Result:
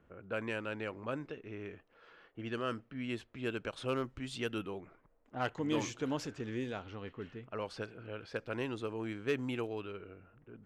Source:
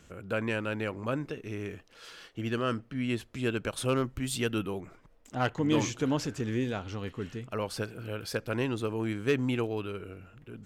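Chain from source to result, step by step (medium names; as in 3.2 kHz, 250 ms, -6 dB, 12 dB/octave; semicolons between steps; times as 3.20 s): tone controls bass -5 dB, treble -2 dB; level-controlled noise filter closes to 1.3 kHz, open at -26.5 dBFS; trim -5.5 dB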